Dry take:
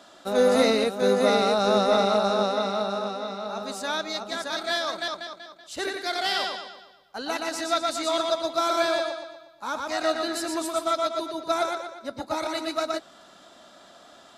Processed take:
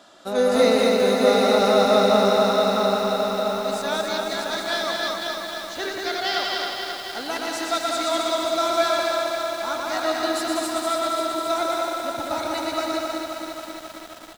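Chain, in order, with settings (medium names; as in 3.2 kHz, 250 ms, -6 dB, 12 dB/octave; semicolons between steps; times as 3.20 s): 5.11–6.45 s: steep low-pass 7 kHz 72 dB/octave; delay 196 ms -4 dB; bit-crushed delay 268 ms, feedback 80%, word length 7-bit, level -5 dB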